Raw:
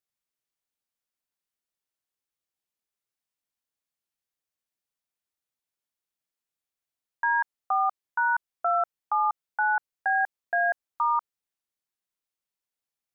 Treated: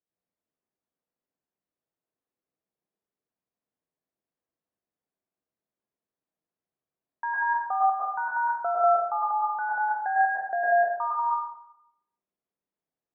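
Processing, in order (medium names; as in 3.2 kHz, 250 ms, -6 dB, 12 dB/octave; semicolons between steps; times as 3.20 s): band-pass filter 400 Hz, Q 0.61; tilt EQ -2 dB/octave; plate-style reverb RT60 0.79 s, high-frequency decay 0.95×, pre-delay 95 ms, DRR -6 dB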